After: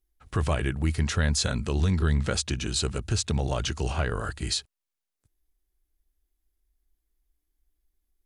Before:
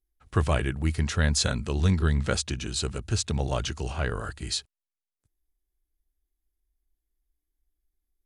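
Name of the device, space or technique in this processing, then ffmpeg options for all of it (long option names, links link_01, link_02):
stacked limiters: -af "alimiter=limit=-17dB:level=0:latency=1:release=46,alimiter=limit=-20dB:level=0:latency=1:release=368,volume=4dB"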